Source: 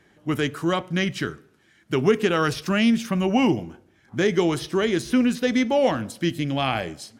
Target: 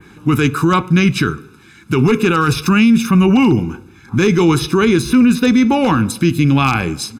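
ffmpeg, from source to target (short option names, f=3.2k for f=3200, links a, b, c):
-filter_complex "[0:a]asplit=2[a][b];[b]acompressor=threshold=-31dB:ratio=16,volume=-1dB[c];[a][c]amix=inputs=2:normalize=0,adynamicequalizer=threshold=0.00891:dfrequency=5400:dqfactor=0.71:tfrequency=5400:tqfactor=0.71:attack=5:release=100:ratio=0.375:range=2.5:mode=cutabove:tftype=bell,aeval=exprs='0.299*(abs(mod(val(0)/0.299+3,4)-2)-1)':c=same,aecho=1:1:0.8:0.87,alimiter=limit=-13dB:level=0:latency=1:release=14,volume=8.5dB"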